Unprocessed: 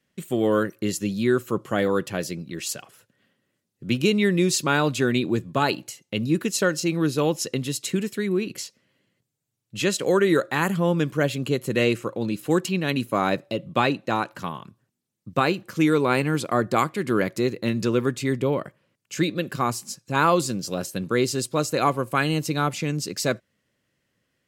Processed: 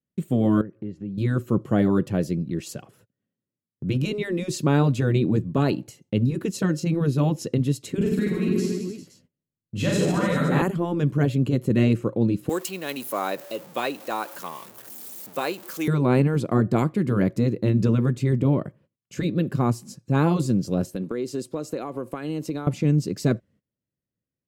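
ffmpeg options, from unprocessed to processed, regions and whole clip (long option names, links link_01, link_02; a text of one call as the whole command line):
ffmpeg -i in.wav -filter_complex "[0:a]asettb=1/sr,asplit=3[link_01][link_02][link_03];[link_01]atrim=end=0.614[link_04];[link_02]atrim=start=0.61:end=1.18,asetpts=PTS-STARTPTS,afade=type=in:duration=0.004:curve=qsin,afade=type=out:start_time=0.566:duration=0.004:curve=qsin,lowpass=2100,acompressor=threshold=-46dB:ratio=2:attack=3.2:release=140:knee=1:detection=peak[link_05];[link_03]atrim=start=1.176[link_06];[link_04][link_05]acrossfade=duration=0.004:curve1=hsin:curve2=qsin[link_07];[link_07][link_06]acrossfade=duration=0.004:curve1=qsin:curve2=hsin,asettb=1/sr,asplit=3[link_08][link_09][link_10];[link_08]atrim=end=7.974[link_11];[link_09]atrim=start=7.97:end=10.62,asetpts=PTS-STARTPTS,afade=type=in:duration=0.004:curve=qsin,afade=type=out:start_time=2.646:duration=0.004:curve=qsin,asplit=2[link_12][link_13];[link_13]adelay=12,volume=-5.5dB[link_14];[link_12][link_14]amix=inputs=2:normalize=0,atrim=end_sample=116865,aecho=1:1:40|88|145.6|214.7|297.7|397.2|516.6:0.794|0.631|0.501|0.398|0.316|0.251|0.2,atrim=end_sample=116865[link_15];[link_10]atrim=start=10.616[link_16];[link_11][link_15]acrossfade=duration=0.004:curve1=hsin:curve2=qsin[link_17];[link_17][link_16]acrossfade=duration=0.004:curve1=qsin:curve2=hsin,asettb=1/sr,asplit=3[link_18][link_19][link_20];[link_18]atrim=end=12.494[link_21];[link_19]atrim=start=12.49:end=15.88,asetpts=PTS-STARTPTS,afade=type=in:duration=0.004:curve=qsin,afade=type=out:start_time=3.386:duration=0.004:curve=qsin,aeval=exprs='val(0)+0.5*0.0188*sgn(val(0))':channel_layout=same,highpass=650,aemphasis=mode=production:type=50fm[link_22];[link_20]atrim=start=15.876[link_23];[link_21][link_22]acrossfade=duration=0.004:curve1=hsin:curve2=qsin[link_24];[link_24][link_23]acrossfade=duration=0.004:curve1=qsin:curve2=hsin,asettb=1/sr,asplit=3[link_25][link_26][link_27];[link_25]atrim=end=20.954[link_28];[link_26]atrim=start=20.95:end=22.67,asetpts=PTS-STARTPTS,afade=type=in:duration=0.004:curve=qsin,afade=type=out:start_time=1.716:duration=0.004:curve=qsin,highpass=270,acompressor=threshold=-27dB:ratio=6:attack=3.2:release=140:knee=1:detection=peak[link_29];[link_27]atrim=start=22.666[link_30];[link_28][link_29]acrossfade=duration=0.004:curve1=hsin:curve2=qsin[link_31];[link_31][link_30]acrossfade=duration=0.004:curve1=qsin:curve2=hsin,afftfilt=real='re*lt(hypot(re,im),0.562)':imag='im*lt(hypot(re,im),0.562)':win_size=1024:overlap=0.75,agate=range=-20dB:threshold=-56dB:ratio=16:detection=peak,tiltshelf=frequency=640:gain=9.5" out.wav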